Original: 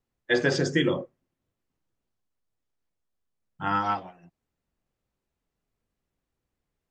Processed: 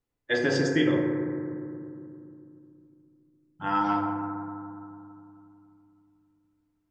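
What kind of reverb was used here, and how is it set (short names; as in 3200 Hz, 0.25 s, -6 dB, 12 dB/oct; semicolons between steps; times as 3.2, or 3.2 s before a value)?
FDN reverb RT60 2.6 s, low-frequency decay 1.45×, high-frequency decay 0.25×, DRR 1 dB; gain -3.5 dB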